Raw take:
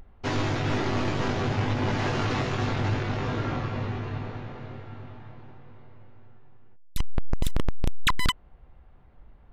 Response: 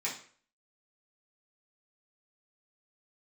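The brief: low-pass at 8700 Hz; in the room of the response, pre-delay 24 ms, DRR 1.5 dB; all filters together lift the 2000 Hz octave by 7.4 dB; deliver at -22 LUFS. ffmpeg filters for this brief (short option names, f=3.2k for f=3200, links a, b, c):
-filter_complex "[0:a]lowpass=8.7k,equalizer=f=2k:t=o:g=9,asplit=2[a][b];[1:a]atrim=start_sample=2205,adelay=24[c];[b][c]afir=irnorm=-1:irlink=0,volume=-6dB[d];[a][d]amix=inputs=2:normalize=0,volume=2.5dB"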